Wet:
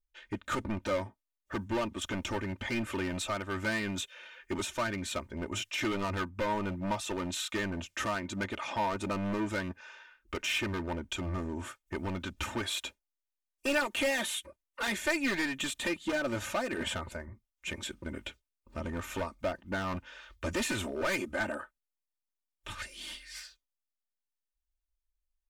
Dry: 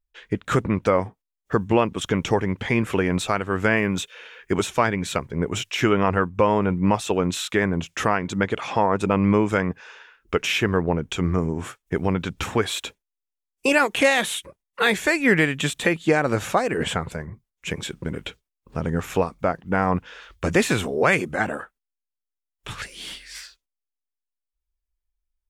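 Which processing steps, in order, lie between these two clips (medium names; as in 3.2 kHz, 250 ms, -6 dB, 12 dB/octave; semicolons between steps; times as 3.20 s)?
overload inside the chain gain 19.5 dB; peaking EQ 320 Hz -3 dB 0.77 oct; comb 3.3 ms, depth 82%; trim -9 dB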